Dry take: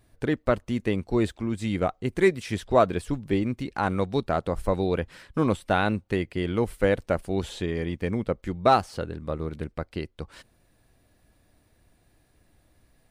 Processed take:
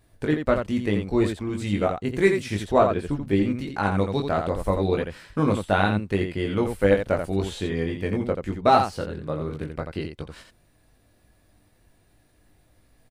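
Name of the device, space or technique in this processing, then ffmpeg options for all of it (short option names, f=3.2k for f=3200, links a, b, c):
slapback doubling: -filter_complex "[0:a]asettb=1/sr,asplit=3[a][b][c];[a]atrim=end=2.784[d];[b]atrim=start=2.78:end=3.24,asetpts=PTS-STARTPTS,afade=t=in:d=0.004:c=qsin,afade=t=out:st=0.456:d=0.004:c=qsin,highshelf=f=4.1k:g=-10.5[e];[c]atrim=start=3.236[f];[d][e]acrossfade=d=0.004:c1=hsin:c2=qsin[g];[g][f]acrossfade=d=0.004:c1=qsin:c2=hsin,asplit=3[h][i][j];[i]adelay=20,volume=-4dB[k];[j]adelay=85,volume=-6dB[l];[h][k][l]amix=inputs=3:normalize=0"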